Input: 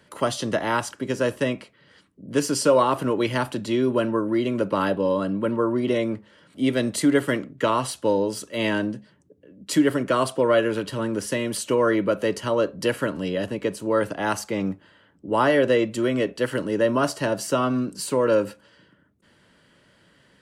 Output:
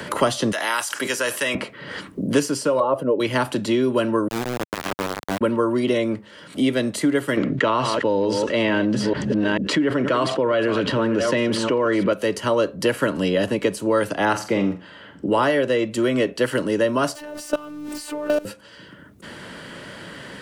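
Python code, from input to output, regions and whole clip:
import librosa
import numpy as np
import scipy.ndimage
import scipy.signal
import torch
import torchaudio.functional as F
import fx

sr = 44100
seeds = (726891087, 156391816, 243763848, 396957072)

y = fx.chain(x, sr, fx.highpass(hz=56.0, slope=12),
    fx.differentiator(),
    fx.env_flatten(amount_pct=70), at=(0.52, 1.55))
y = fx.chain(y, sr, fx.spec_expand(power=1.5),
    fx.peak_eq(hz=550.0, db=14.5, octaves=0.52), at=(2.8, 3.2))
y = fx.chain(y, sr, fx.tone_stack(knobs='10-0-1'),
    fx.notch(hz=1500.0, q=7.4),
    fx.quant_companded(bits=2), at=(4.28, 5.41))
y = fx.chain(y, sr, fx.reverse_delay(ms=441, wet_db=-13.5),
    fx.lowpass(hz=4200.0, slope=12),
    fx.env_flatten(amount_pct=70), at=(7.37, 12.13))
y = fx.chain(y, sr, fx.lowpass(hz=2900.0, slope=6),
    fx.room_flutter(wall_m=7.6, rt60_s=0.3), at=(14.25, 15.43))
y = fx.chain(y, sr, fx.zero_step(step_db=-30.0),
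    fx.robotise(hz=298.0),
    fx.level_steps(step_db=20), at=(17.15, 18.45))
y = fx.rider(y, sr, range_db=10, speed_s=0.5)
y = fx.low_shelf(y, sr, hz=150.0, db=-4.0)
y = fx.band_squash(y, sr, depth_pct=70)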